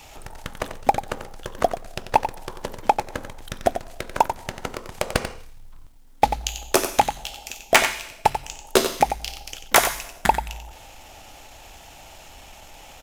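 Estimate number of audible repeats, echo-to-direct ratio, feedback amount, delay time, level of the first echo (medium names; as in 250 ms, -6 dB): 1, -9.5 dB, no regular repeats, 91 ms, -9.5 dB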